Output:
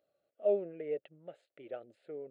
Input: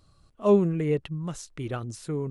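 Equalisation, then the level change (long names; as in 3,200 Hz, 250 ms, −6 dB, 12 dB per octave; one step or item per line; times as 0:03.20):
high-pass with resonance 580 Hz, resonance Q 4.2
head-to-tape spacing loss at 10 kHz 32 dB
phaser with its sweep stopped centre 2,500 Hz, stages 4
−7.5 dB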